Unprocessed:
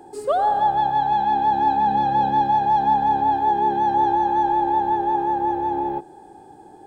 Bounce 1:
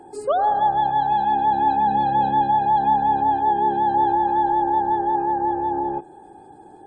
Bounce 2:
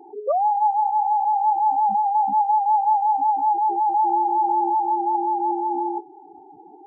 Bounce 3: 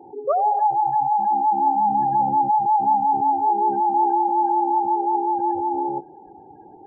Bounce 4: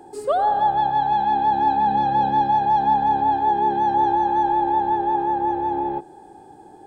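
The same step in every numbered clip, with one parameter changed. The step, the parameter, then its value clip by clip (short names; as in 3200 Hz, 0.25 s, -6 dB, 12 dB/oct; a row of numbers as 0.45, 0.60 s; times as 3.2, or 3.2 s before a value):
spectral gate, under each frame's peak: -40, -10, -20, -60 dB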